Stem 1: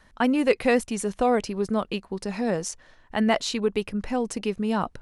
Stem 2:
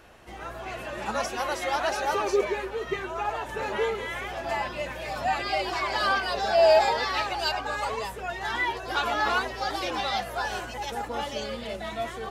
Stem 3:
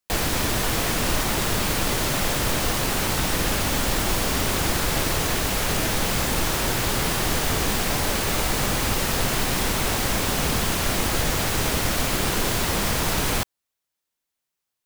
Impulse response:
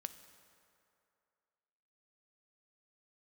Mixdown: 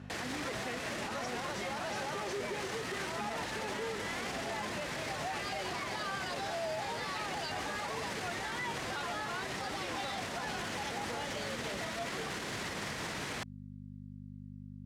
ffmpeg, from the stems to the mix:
-filter_complex "[0:a]volume=-12.5dB[a];[1:a]alimiter=limit=-20dB:level=0:latency=1,volume=-5.5dB[b];[2:a]aeval=exprs='val(0)+0.0251*(sin(2*PI*50*n/s)+sin(2*PI*2*50*n/s)/2+sin(2*PI*3*50*n/s)/3+sin(2*PI*4*50*n/s)/4+sin(2*PI*5*50*n/s)/5)':c=same,volume=-7dB[c];[a][c]amix=inputs=2:normalize=0,equalizer=f=1.9k:w=2.8:g=5.5,alimiter=level_in=2.5dB:limit=-24dB:level=0:latency=1,volume=-2.5dB,volume=0dB[d];[b][d]amix=inputs=2:normalize=0,highpass=120,lowpass=7.2k,alimiter=level_in=5dB:limit=-24dB:level=0:latency=1,volume=-5dB"

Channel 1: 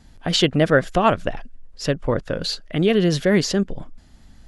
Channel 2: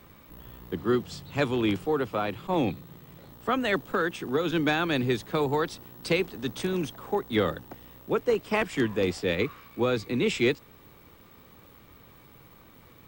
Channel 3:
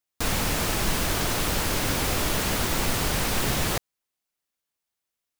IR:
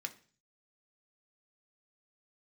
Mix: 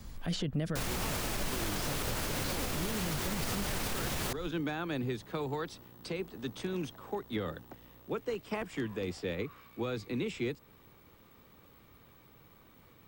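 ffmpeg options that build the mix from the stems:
-filter_complex "[0:a]bass=f=250:g=7,treble=f=4k:g=8,volume=-4dB[a];[1:a]volume=-6dB[b];[2:a]adelay=550,volume=-2.5dB[c];[a][b]amix=inputs=2:normalize=0,acrossover=split=190|1600|7300[d][e][f][g];[d]acompressor=threshold=-32dB:ratio=4[h];[e]acompressor=threshold=-33dB:ratio=4[i];[f]acompressor=threshold=-44dB:ratio=4[j];[g]acompressor=threshold=-58dB:ratio=4[k];[h][i][j][k]amix=inputs=4:normalize=0,alimiter=limit=-23dB:level=0:latency=1:release=38,volume=0dB[l];[c][l]amix=inputs=2:normalize=0,alimiter=level_in=0.5dB:limit=-24dB:level=0:latency=1:release=138,volume=-0.5dB"

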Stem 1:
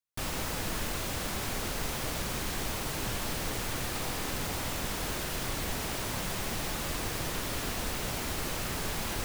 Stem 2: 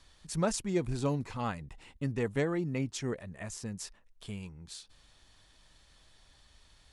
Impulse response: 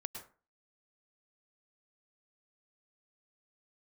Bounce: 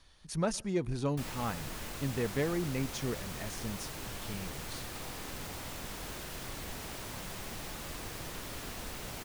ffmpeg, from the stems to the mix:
-filter_complex "[0:a]adelay=1000,volume=-8dB[a];[1:a]bandreject=f=7.6k:w=5.7,volume=-1.5dB,asplit=2[b][c];[c]volume=-20dB[d];[2:a]atrim=start_sample=2205[e];[d][e]afir=irnorm=-1:irlink=0[f];[a][b][f]amix=inputs=3:normalize=0,asoftclip=type=tanh:threshold=-17.5dB"

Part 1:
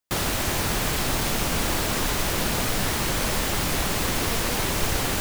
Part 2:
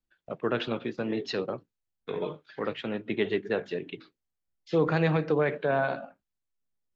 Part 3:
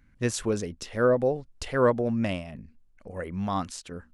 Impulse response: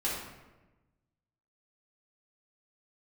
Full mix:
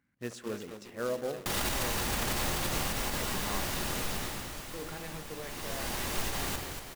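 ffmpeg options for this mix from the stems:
-filter_complex "[0:a]adelay=1350,volume=11.5dB,afade=t=out:st=2.06:d=0.67:silence=0.281838,afade=t=out:st=3.96:d=0.51:silence=0.251189,afade=t=in:st=5.41:d=0.64:silence=0.237137,asplit=3[a][b][c];[b]volume=-7.5dB[d];[c]volume=-5dB[e];[1:a]aeval=exprs='val(0)*gte(abs(val(0)),0.0335)':c=same,volume=-17.5dB,asplit=2[f][g];[g]volume=-14.5dB[h];[2:a]highpass=130,highshelf=f=4.6k:g=-10.5,volume=-9.5dB,asplit=3[i][j][k];[j]volume=-20.5dB[l];[k]volume=-12dB[m];[3:a]atrim=start_sample=2205[n];[d][h][l]amix=inputs=3:normalize=0[o];[o][n]afir=irnorm=-1:irlink=0[p];[e][m]amix=inputs=2:normalize=0,aecho=0:1:236|472|708|944|1180|1416|1652|1888|2124:1|0.58|0.336|0.195|0.113|0.0656|0.0381|0.0221|0.0128[q];[a][f][i][p][q]amix=inputs=5:normalize=0,lowshelf=f=460:g=-3,acrusher=bits=3:mode=log:mix=0:aa=0.000001,alimiter=limit=-22dB:level=0:latency=1:release=55"

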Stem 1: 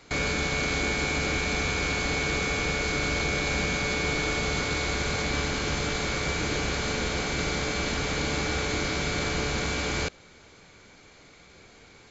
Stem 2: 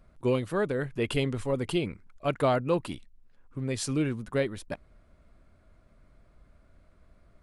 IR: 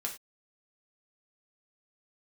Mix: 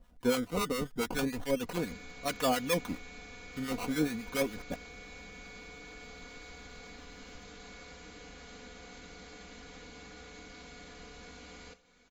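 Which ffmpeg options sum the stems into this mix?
-filter_complex "[0:a]acompressor=threshold=-34dB:ratio=6,adelay=1650,volume=-18.5dB,asplit=2[a][b];[b]volume=-4dB[c];[1:a]acrusher=samples=18:mix=1:aa=0.000001:lfo=1:lforange=18:lforate=0.35,acrossover=split=880[d][e];[d]aeval=exprs='val(0)*(1-0.7/2+0.7/2*cos(2*PI*7.2*n/s))':c=same[f];[e]aeval=exprs='val(0)*(1-0.7/2-0.7/2*cos(2*PI*7.2*n/s))':c=same[g];[f][g]amix=inputs=2:normalize=0,volume=-1.5dB[h];[2:a]atrim=start_sample=2205[i];[c][i]afir=irnorm=-1:irlink=0[j];[a][h][j]amix=inputs=3:normalize=0,aecho=1:1:4.1:0.7"

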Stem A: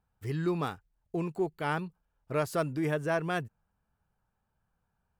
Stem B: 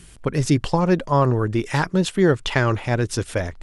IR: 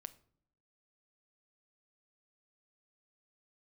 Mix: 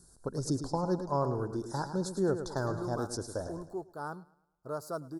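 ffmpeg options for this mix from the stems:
-filter_complex "[0:a]adelay=2350,volume=-6dB,asplit=2[a][b];[b]volume=-22dB[c];[1:a]equalizer=f=1.2k:t=o:w=0.29:g=-6.5,volume=-10dB,asplit=2[d][e];[e]volume=-9.5dB[f];[c][f]amix=inputs=2:normalize=0,aecho=0:1:106|212|318|424|530|636:1|0.43|0.185|0.0795|0.0342|0.0147[g];[a][d][g]amix=inputs=3:normalize=0,asuperstop=centerf=2500:order=8:qfactor=0.87,lowshelf=f=220:g=-7.5"

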